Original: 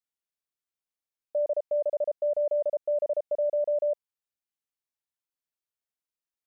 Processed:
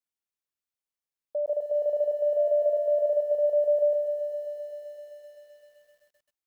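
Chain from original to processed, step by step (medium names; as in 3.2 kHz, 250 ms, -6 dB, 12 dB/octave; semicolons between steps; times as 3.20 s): 2.36–3.10 s: whistle 670 Hz -34 dBFS; bit-crushed delay 129 ms, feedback 80%, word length 10-bit, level -9.5 dB; trim -2 dB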